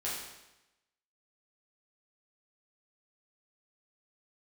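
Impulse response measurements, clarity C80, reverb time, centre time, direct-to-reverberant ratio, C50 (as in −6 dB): 4.0 dB, 0.95 s, 64 ms, −8.0 dB, 1.0 dB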